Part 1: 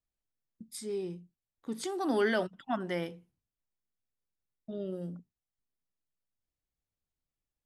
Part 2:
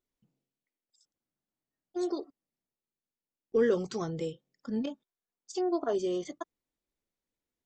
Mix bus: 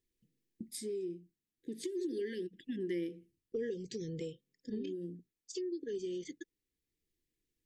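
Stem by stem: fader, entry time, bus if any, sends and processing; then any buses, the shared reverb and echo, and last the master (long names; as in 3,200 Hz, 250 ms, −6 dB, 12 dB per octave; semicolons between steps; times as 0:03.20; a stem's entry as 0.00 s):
+2.5 dB, 0.00 s, no send, parametric band 340 Hz +13.5 dB 0.47 octaves; automatic ducking −8 dB, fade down 0.35 s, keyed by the second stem
−2.0 dB, 0.00 s, no send, no processing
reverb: not used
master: linear-phase brick-wall band-stop 520–1,600 Hz; downward compressor 3 to 1, threshold −38 dBFS, peak gain reduction 13 dB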